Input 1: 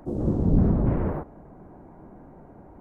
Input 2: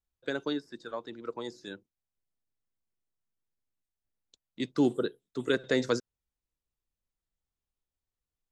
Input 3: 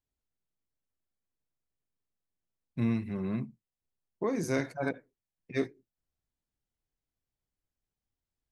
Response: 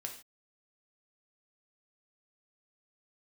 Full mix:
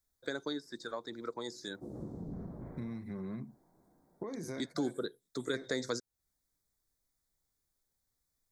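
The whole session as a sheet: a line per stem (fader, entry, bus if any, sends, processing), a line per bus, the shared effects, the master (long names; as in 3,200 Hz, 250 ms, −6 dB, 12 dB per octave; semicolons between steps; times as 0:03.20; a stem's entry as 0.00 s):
−11.0 dB, 1.75 s, bus A, send −13 dB, high-shelf EQ 3,300 Hz +10 dB; automatic ducking −18 dB, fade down 1.25 s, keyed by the third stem
+2.0 dB, 0.00 s, no bus, no send, high-shelf EQ 3,400 Hz +10 dB
+0.5 dB, 0.00 s, bus A, no send, no processing
bus A: 0.0 dB, high-pass filter 91 Hz; downward compressor 4 to 1, threshold −35 dBFS, peak gain reduction 10 dB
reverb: on, pre-delay 3 ms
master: Butterworth band-reject 2,800 Hz, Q 2.4; downward compressor 2 to 1, threshold −40 dBFS, peak gain reduction 12 dB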